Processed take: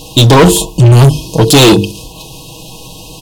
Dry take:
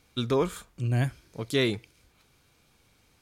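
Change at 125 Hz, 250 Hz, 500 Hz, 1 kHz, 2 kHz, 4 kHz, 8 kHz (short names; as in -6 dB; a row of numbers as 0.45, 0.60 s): +23.5, +22.0, +19.5, +25.0, +18.5, +24.0, +31.0 dB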